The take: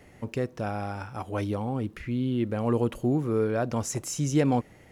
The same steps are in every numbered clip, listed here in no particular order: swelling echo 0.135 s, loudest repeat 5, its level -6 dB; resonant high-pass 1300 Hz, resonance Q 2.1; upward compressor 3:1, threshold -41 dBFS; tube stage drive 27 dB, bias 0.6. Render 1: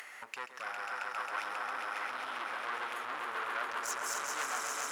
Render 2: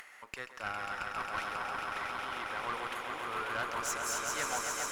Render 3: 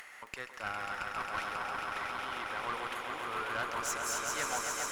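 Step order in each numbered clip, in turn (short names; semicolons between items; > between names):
swelling echo > tube stage > resonant high-pass > upward compressor; swelling echo > upward compressor > resonant high-pass > tube stage; resonant high-pass > upward compressor > swelling echo > tube stage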